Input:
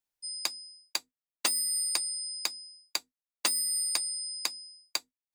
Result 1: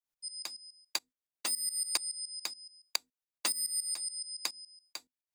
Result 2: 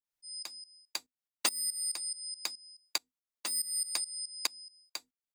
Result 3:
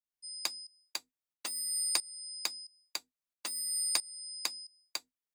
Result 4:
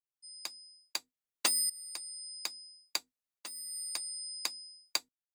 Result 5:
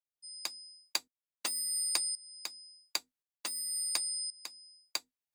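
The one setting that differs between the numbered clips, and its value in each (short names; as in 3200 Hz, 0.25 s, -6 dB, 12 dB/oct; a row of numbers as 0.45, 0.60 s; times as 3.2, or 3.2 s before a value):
tremolo, rate: 7.1, 4.7, 1.5, 0.59, 0.93 Hz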